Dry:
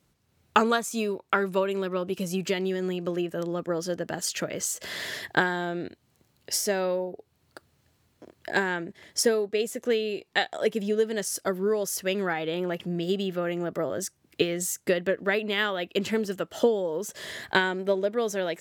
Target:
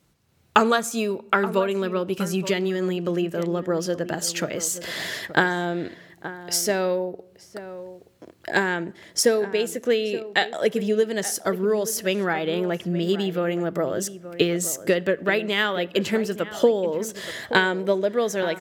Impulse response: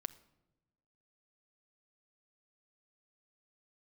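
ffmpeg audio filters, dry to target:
-filter_complex "[0:a]asplit=2[s0][s1];[s1]adelay=874.6,volume=0.224,highshelf=f=4000:g=-19.7[s2];[s0][s2]amix=inputs=2:normalize=0,asplit=2[s3][s4];[1:a]atrim=start_sample=2205[s5];[s4][s5]afir=irnorm=-1:irlink=0,volume=1.33[s6];[s3][s6]amix=inputs=2:normalize=0,volume=0.794"

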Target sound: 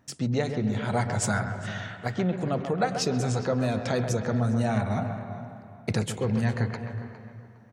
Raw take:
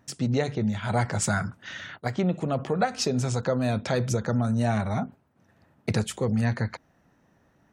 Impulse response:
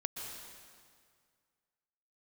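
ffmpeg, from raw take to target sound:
-filter_complex "[0:a]asplit=2[s0][s1];[s1]adelay=409,lowpass=f=2500:p=1,volume=0.224,asplit=2[s2][s3];[s3]adelay=409,lowpass=f=2500:p=1,volume=0.29,asplit=2[s4][s5];[s5]adelay=409,lowpass=f=2500:p=1,volume=0.29[s6];[s0][s2][s4][s6]amix=inputs=4:normalize=0,asplit=2[s7][s8];[1:a]atrim=start_sample=2205,lowpass=2600,adelay=133[s9];[s8][s9]afir=irnorm=-1:irlink=0,volume=0.447[s10];[s7][s10]amix=inputs=2:normalize=0,volume=0.841"

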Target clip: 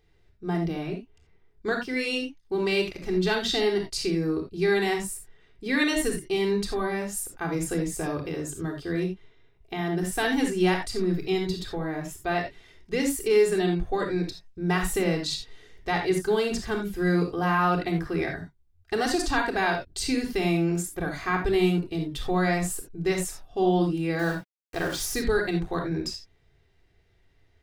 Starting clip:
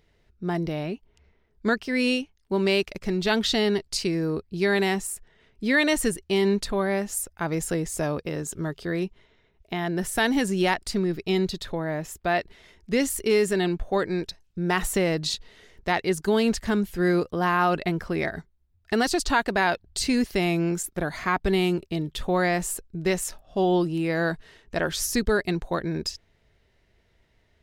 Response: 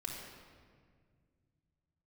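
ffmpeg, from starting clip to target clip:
-filter_complex "[0:a]asettb=1/sr,asplit=3[s0][s1][s2];[s0]atrim=end=24.194[s3];[s1]atrim=start=24.19:end=25.14,asetpts=PTS-STARTPTS,afade=t=in:d=0.004:c=qsin,afade=t=out:st=0.946:d=0.004:c=qsin,aeval=exprs='val(0)*gte(abs(val(0)),0.0211)':c=same[s4];[s2]atrim=start=25.136[s5];[s3][s4]acrossfade=d=0.004:c1=hsin:c2=qsin[s6];[s6][s5]acrossfade=d=0.004:c1=qsin:c2=hsin[s7];[1:a]atrim=start_sample=2205,afade=t=out:st=0.14:d=0.01,atrim=end_sample=6615[s8];[s7][s8]afir=irnorm=-1:irlink=0"

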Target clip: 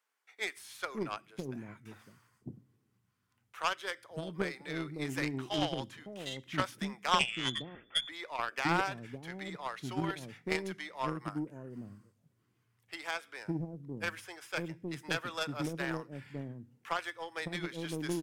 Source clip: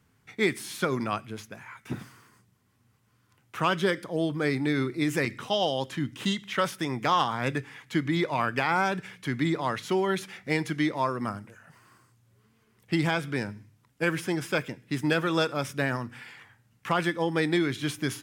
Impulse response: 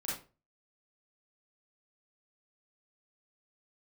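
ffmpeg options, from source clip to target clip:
-filter_complex "[0:a]asettb=1/sr,asplit=3[s0][s1][s2];[s0]atrim=end=7.194[s3];[s1]atrim=start=7.19:end=8.09,asetpts=PTS-STARTPTS,afade=t=in:d=0.004:c=qsin,afade=t=out:st=0.896:d=0.004:c=qsin,lowpass=f=3100:t=q:w=0.5098,lowpass=f=3100:t=q:w=0.6013,lowpass=f=3100:t=q:w=0.9,lowpass=f=3100:t=q:w=2.563,afreqshift=-3600[s4];[s2]atrim=start=8.086[s5];[s3][s4]acrossfade=d=0.004:c1=hsin:c2=qsin[s6];[s6][s5]acrossfade=d=0.004:c1=qsin:c2=hsin,acrossover=split=480[s7][s8];[s7]adelay=560[s9];[s9][s8]amix=inputs=2:normalize=0,acontrast=65,aeval=exprs='0.501*(cos(1*acos(clip(val(0)/0.501,-1,1)))-cos(1*PI/2))+0.0158*(cos(2*acos(clip(val(0)/0.501,-1,1)))-cos(2*PI/2))+0.141*(cos(3*acos(clip(val(0)/0.501,-1,1)))-cos(3*PI/2))+0.00708*(cos(5*acos(clip(val(0)/0.501,-1,1)))-cos(5*PI/2))':c=same,volume=0.562"

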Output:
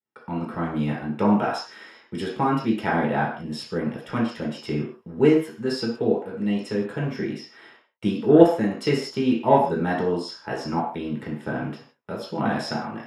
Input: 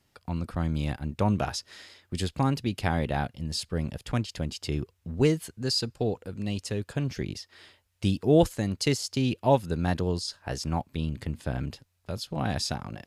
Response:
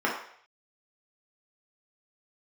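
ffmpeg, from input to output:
-filter_complex "[0:a]agate=range=0.0224:threshold=0.002:ratio=3:detection=peak,acontrast=58[s0];[1:a]atrim=start_sample=2205,afade=t=out:st=0.23:d=0.01,atrim=end_sample=10584[s1];[s0][s1]afir=irnorm=-1:irlink=0,volume=0.237"

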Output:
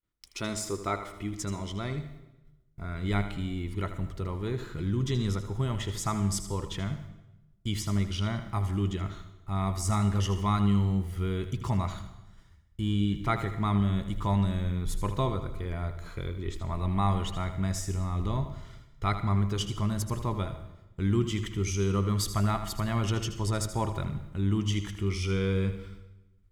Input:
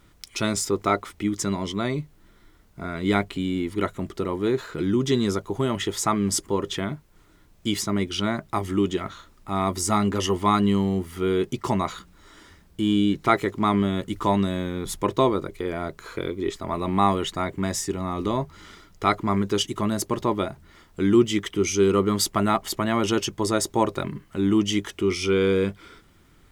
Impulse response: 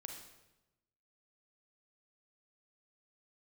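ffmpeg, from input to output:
-filter_complex "[0:a]agate=range=0.0224:threshold=0.00794:ratio=3:detection=peak,asubboost=boost=9.5:cutoff=100,asplit=2[s0][s1];[1:a]atrim=start_sample=2205,adelay=79[s2];[s1][s2]afir=irnorm=-1:irlink=0,volume=0.562[s3];[s0][s3]amix=inputs=2:normalize=0,volume=0.376"

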